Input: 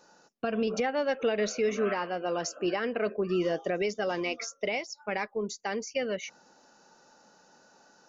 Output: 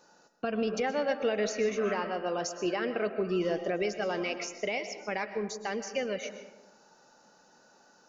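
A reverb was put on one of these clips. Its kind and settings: algorithmic reverb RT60 1.1 s, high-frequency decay 0.45×, pre-delay 85 ms, DRR 9.5 dB; trim -1.5 dB

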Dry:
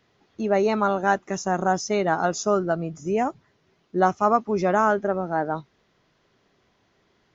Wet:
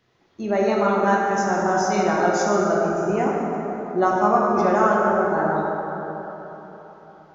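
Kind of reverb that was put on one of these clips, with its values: plate-style reverb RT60 3.9 s, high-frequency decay 0.45×, DRR -4 dB; trim -2.5 dB

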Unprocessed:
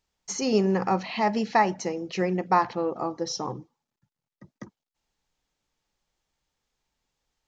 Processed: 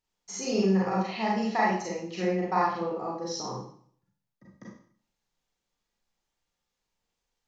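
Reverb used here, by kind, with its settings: Schroeder reverb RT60 0.55 s, combs from 32 ms, DRR -5 dB; trim -9 dB

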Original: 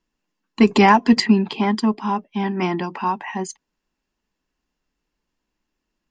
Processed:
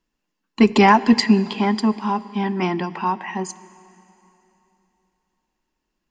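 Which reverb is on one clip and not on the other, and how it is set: plate-style reverb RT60 3.2 s, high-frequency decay 0.95×, DRR 16.5 dB

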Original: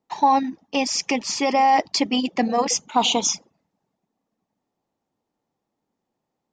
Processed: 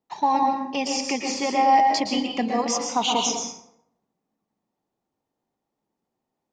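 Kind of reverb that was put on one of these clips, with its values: plate-style reverb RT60 0.75 s, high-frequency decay 0.6×, pre-delay 105 ms, DRR 1.5 dB; trim -4.5 dB

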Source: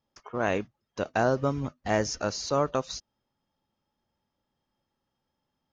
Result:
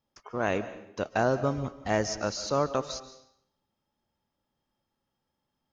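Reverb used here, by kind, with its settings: algorithmic reverb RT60 0.75 s, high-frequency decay 0.9×, pre-delay 105 ms, DRR 13 dB; trim -1 dB

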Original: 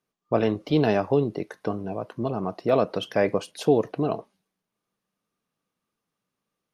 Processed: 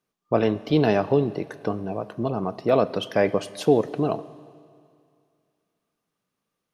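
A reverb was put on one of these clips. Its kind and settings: Schroeder reverb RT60 2.3 s, combs from 30 ms, DRR 16.5 dB; trim +1.5 dB

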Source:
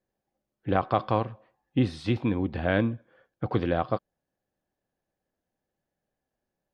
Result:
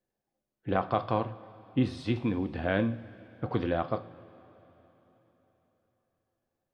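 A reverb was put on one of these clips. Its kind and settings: two-slope reverb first 0.41 s, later 4 s, from -17 dB, DRR 9 dB; trim -3.5 dB

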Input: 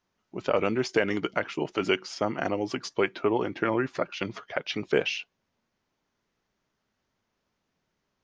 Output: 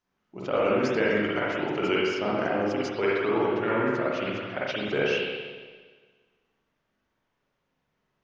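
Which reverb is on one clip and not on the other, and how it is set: spring tank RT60 1.5 s, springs 43/58 ms, chirp 75 ms, DRR -7 dB; trim -5.5 dB

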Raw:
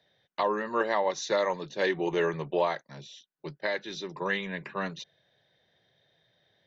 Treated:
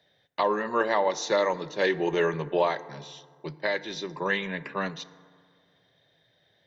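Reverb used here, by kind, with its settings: FDN reverb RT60 1.9 s, low-frequency decay 1.1×, high-frequency decay 0.4×, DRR 15 dB; trim +2.5 dB

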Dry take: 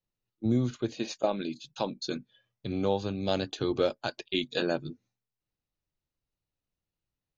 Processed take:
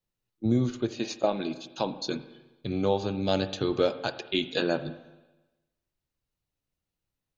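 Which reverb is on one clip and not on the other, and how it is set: spring tank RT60 1.1 s, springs 38/52 ms, chirp 55 ms, DRR 11.5 dB; trim +2 dB

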